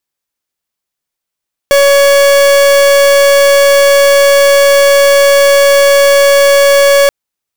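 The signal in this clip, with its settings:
pulse wave 561 Hz, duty 43% −6 dBFS 5.38 s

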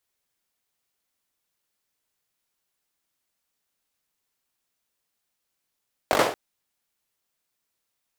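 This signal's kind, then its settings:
synth clap length 0.23 s, bursts 5, apart 20 ms, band 550 Hz, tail 0.44 s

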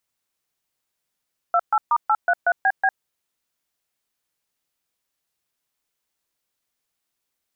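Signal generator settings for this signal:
touch tones "28*833BB", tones 55 ms, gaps 130 ms, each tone −17.5 dBFS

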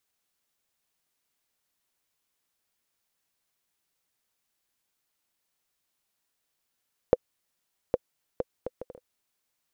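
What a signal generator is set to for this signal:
bouncing ball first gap 0.81 s, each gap 0.57, 504 Hz, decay 34 ms −6 dBFS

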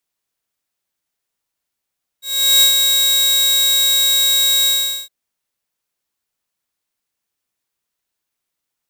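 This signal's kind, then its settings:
note with an ADSR envelope saw 3,810 Hz, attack 396 ms, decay 103 ms, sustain −4.5 dB, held 2.45 s, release 414 ms −5 dBFS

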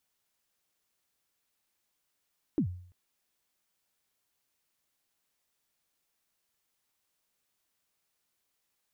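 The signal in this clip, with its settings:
synth kick length 0.34 s, from 350 Hz, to 90 Hz, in 89 ms, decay 0.56 s, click off, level −21.5 dB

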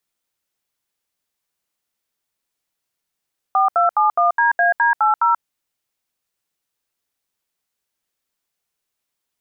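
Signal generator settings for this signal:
touch tones "4271DAD80", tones 134 ms, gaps 74 ms, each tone −15 dBFS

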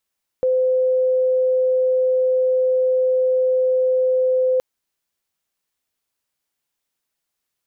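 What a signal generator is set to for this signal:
tone sine 513 Hz −14.5 dBFS 4.17 s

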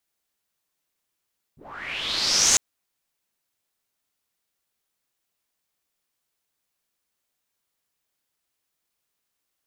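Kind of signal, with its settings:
filter sweep on noise white, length 1.00 s lowpass, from 100 Hz, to 6,900 Hz, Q 5.2, linear, gain ramp +18 dB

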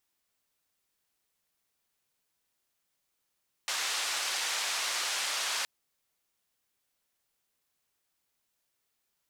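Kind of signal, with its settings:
band-limited noise 790–6,300 Hz, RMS −32.5 dBFS 1.97 s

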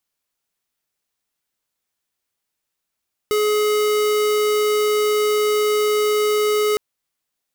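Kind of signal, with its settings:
tone square 422 Hz −18 dBFS 3.46 s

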